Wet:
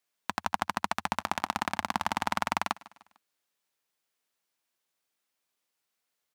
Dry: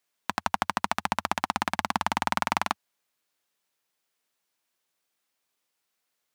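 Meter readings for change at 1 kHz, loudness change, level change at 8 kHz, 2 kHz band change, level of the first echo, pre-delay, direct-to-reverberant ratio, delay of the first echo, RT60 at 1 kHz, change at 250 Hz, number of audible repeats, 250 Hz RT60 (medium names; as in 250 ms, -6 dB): -3.0 dB, -3.0 dB, -3.0 dB, -3.0 dB, -21.0 dB, no reverb, no reverb, 150 ms, no reverb, -3.0 dB, 3, no reverb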